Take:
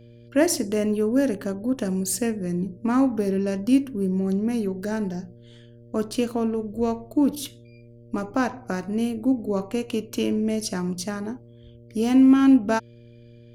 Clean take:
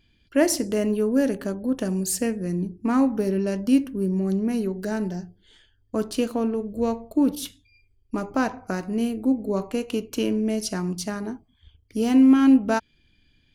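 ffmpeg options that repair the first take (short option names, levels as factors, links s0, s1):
-af "bandreject=f=118.1:t=h:w=4,bandreject=f=236.2:t=h:w=4,bandreject=f=354.3:t=h:w=4,bandreject=f=472.4:t=h:w=4,bandreject=f=590.5:t=h:w=4"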